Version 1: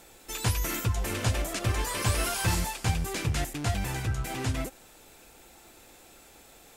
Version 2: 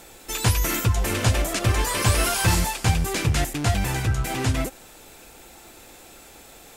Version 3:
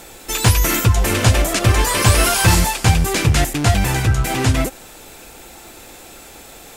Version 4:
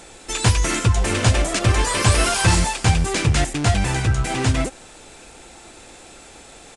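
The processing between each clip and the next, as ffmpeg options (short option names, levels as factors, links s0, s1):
-af "acontrast=80"
-af "asoftclip=type=hard:threshold=0.299,volume=2.24"
-af "aresample=22050,aresample=44100,volume=0.708"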